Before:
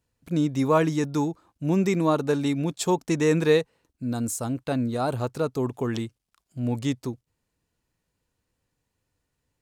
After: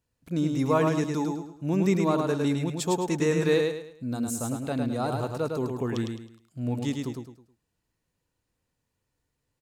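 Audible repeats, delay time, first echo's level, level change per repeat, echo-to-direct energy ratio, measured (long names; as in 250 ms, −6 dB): 4, 106 ms, −4.0 dB, −9.5 dB, −3.5 dB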